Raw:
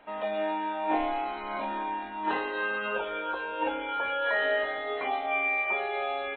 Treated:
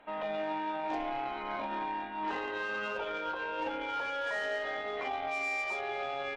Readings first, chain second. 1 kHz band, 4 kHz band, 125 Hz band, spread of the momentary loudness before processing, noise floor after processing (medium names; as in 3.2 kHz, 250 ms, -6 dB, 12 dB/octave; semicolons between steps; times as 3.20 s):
-4.5 dB, -3.5 dB, no reading, 7 LU, -39 dBFS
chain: Chebyshev shaper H 5 -19 dB, 6 -33 dB, 7 -19 dB, 8 -28 dB, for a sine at -14.5 dBFS; peak limiter -26 dBFS, peak gain reduction 10 dB